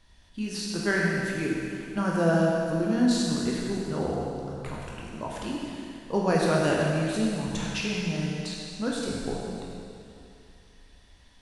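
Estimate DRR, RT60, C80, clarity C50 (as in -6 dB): -4.0 dB, 2.6 s, 0.0 dB, -1.5 dB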